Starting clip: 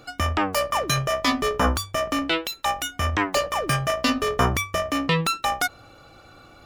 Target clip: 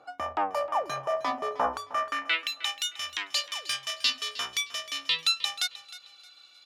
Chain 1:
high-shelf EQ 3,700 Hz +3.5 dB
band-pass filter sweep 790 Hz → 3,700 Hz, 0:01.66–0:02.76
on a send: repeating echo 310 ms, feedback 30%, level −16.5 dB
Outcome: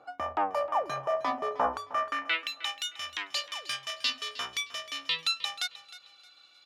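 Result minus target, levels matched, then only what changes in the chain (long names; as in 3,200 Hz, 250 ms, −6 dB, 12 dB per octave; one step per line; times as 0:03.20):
8,000 Hz band −3.5 dB
change: high-shelf EQ 3,700 Hz +11 dB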